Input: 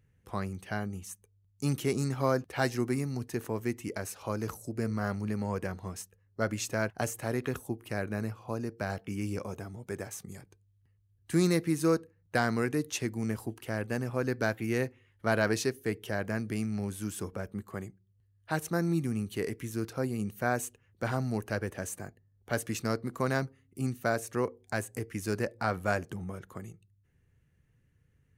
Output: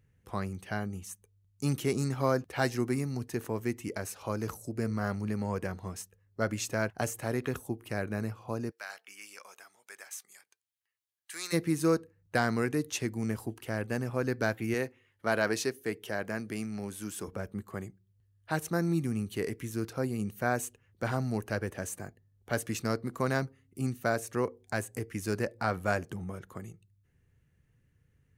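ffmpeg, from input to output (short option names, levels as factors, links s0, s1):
-filter_complex "[0:a]asplit=3[s0][s1][s2];[s0]afade=t=out:st=8.7:d=0.02[s3];[s1]highpass=1400,afade=t=in:st=8.7:d=0.02,afade=t=out:st=11.52:d=0.02[s4];[s2]afade=t=in:st=11.52:d=0.02[s5];[s3][s4][s5]amix=inputs=3:normalize=0,asettb=1/sr,asplit=3[s6][s7][s8];[s6]atrim=end=14.744[s9];[s7]atrim=start=14.74:end=17.28,asetpts=PTS-STARTPTS,afade=t=in:d=0.004:c=qsin,afade=t=out:st=2.536:d=0.004:c=qsin,highpass=f=240:p=1[s10];[s8]atrim=start=17.276[s11];[s9][s10]acrossfade=d=0.004:c1=hsin:c2=qsin[s12];[s12][s11]acrossfade=d=0.004:c1=qsin:c2=hsin"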